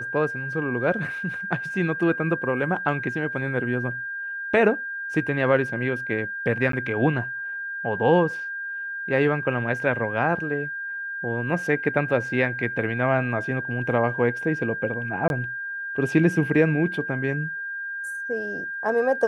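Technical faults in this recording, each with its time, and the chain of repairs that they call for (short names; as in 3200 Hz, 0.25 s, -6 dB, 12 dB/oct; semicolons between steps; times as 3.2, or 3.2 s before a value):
tone 1600 Hz -29 dBFS
6.72–6.73 gap 13 ms
15.28–15.3 gap 21 ms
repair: notch 1600 Hz, Q 30; interpolate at 6.72, 13 ms; interpolate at 15.28, 21 ms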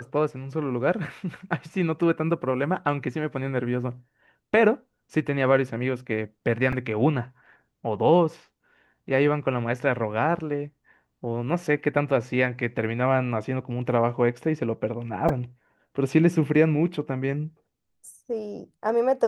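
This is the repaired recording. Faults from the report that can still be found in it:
none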